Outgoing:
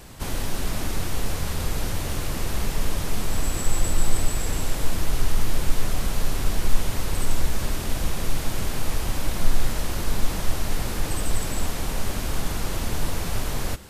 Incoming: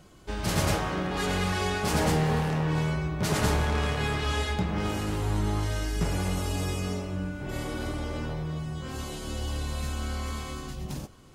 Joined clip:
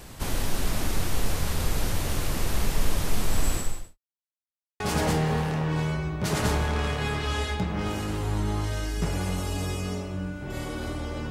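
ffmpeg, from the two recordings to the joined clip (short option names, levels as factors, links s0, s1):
-filter_complex "[0:a]apad=whole_dur=11.3,atrim=end=11.3,asplit=2[s0][s1];[s0]atrim=end=3.98,asetpts=PTS-STARTPTS,afade=t=out:st=3.53:d=0.45:c=qua[s2];[s1]atrim=start=3.98:end=4.8,asetpts=PTS-STARTPTS,volume=0[s3];[1:a]atrim=start=1.79:end=8.29,asetpts=PTS-STARTPTS,afade=t=in:d=0.004:c=hsin[s4];[s2][s3][s4]concat=n=3:v=0:a=1"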